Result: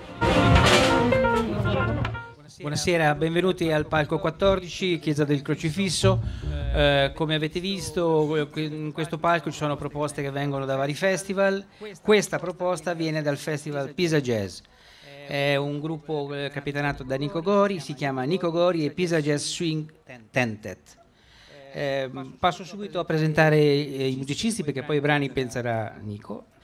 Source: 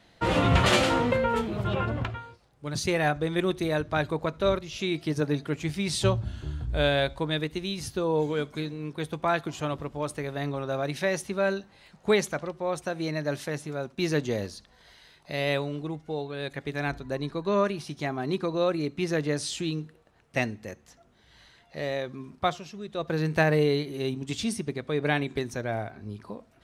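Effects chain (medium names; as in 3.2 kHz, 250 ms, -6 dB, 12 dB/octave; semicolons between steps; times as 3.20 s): reverse echo 273 ms -20.5 dB; trim +4 dB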